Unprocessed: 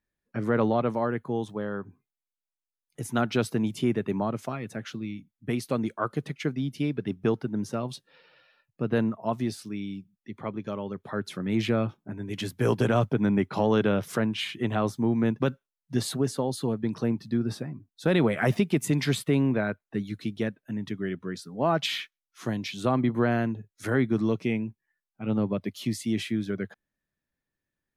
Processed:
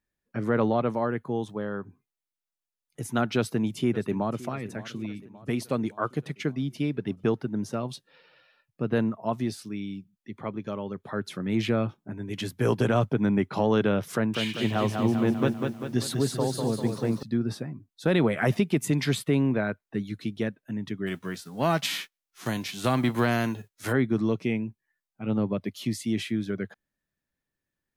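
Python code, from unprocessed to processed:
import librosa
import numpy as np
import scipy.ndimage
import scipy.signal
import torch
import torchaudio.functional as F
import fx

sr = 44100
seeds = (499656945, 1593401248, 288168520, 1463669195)

y = fx.echo_throw(x, sr, start_s=3.36, length_s=1.13, ms=570, feedback_pct=60, wet_db=-17.5)
y = fx.echo_crushed(y, sr, ms=197, feedback_pct=55, bits=9, wet_db=-4.5, at=(14.14, 17.23))
y = fx.envelope_flatten(y, sr, power=0.6, at=(21.06, 23.91), fade=0.02)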